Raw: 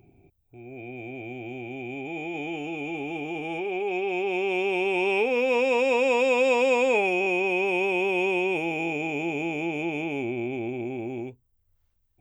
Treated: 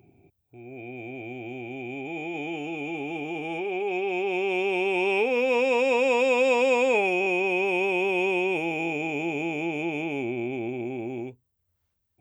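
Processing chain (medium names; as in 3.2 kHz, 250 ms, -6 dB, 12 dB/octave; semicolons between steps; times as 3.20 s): high-pass 87 Hz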